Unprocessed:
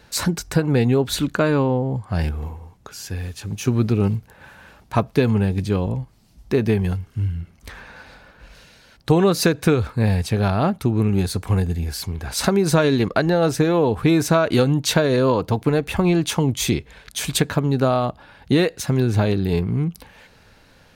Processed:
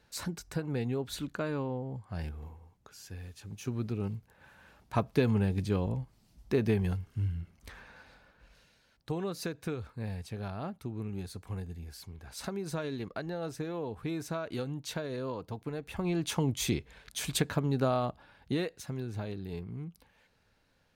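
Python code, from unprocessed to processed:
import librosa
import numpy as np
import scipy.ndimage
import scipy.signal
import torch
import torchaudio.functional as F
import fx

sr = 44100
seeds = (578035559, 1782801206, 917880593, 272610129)

y = fx.gain(x, sr, db=fx.line((4.14, -15.5), (5.13, -9.0), (7.39, -9.0), (9.18, -19.0), (15.77, -19.0), (16.34, -10.0), (18.04, -10.0), (19.05, -19.0)))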